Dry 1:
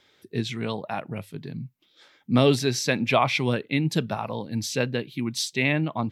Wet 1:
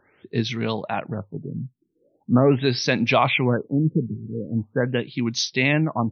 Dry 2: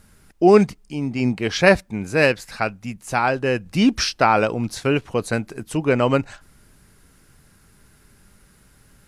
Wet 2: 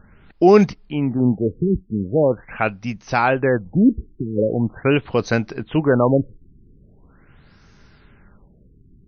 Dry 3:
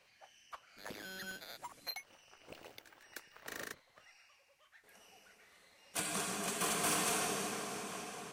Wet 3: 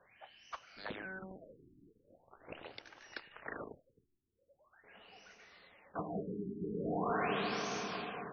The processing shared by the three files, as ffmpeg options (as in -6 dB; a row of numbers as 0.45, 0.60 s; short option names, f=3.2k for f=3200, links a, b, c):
-filter_complex "[0:a]asplit=2[a][b];[b]alimiter=limit=-13dB:level=0:latency=1:release=25,volume=-0.5dB[c];[a][c]amix=inputs=2:normalize=0,afftfilt=real='re*lt(b*sr/1024,410*pow(6600/410,0.5+0.5*sin(2*PI*0.42*pts/sr)))':imag='im*lt(b*sr/1024,410*pow(6600/410,0.5+0.5*sin(2*PI*0.42*pts/sr)))':win_size=1024:overlap=0.75,volume=-1.5dB"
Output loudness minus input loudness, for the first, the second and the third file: +2.5, +0.5, -2.5 LU